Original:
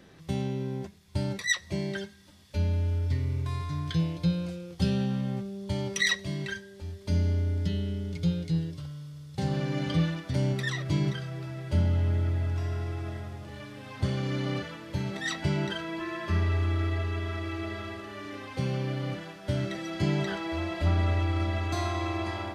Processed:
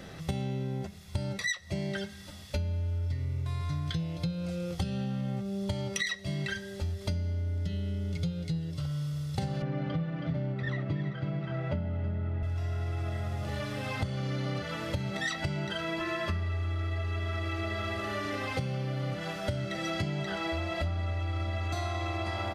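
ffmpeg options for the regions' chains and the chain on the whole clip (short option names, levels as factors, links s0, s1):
-filter_complex "[0:a]asettb=1/sr,asplit=3[s0][s1][s2];[s0]atrim=end=9.624[s3];[s1]atrim=start=9.62:end=12.43,asetpts=PTS-STARTPTS,afade=t=in:d=0.004:c=qsin,afade=t=out:st=2.806:d=0.004:c=qsin,highpass=140,lowpass=2200,lowshelf=f=360:g=5,aecho=1:1:323:0.447,atrim=end_sample=123921[s4];[s2]atrim=start=12.426[s5];[s3][s4]acrossfade=d=0.004:c1=hsin:c2=qsin[s6];[s6][s5]acrossfade=d=0.004:c1=qsin:c2=hsin,aecho=1:1:1.5:0.36,acompressor=threshold=0.0126:ratio=16,volume=2.82"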